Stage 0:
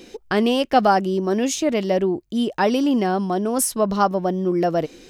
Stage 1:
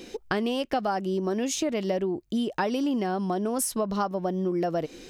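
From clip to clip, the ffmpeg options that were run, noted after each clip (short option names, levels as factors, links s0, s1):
-af "acompressor=threshold=0.0631:ratio=6"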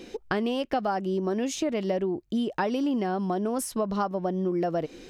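-af "highshelf=f=4500:g=-7"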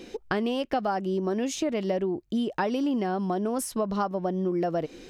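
-af anull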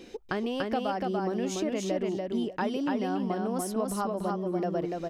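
-af "aecho=1:1:290|580|870:0.708|0.113|0.0181,volume=0.631"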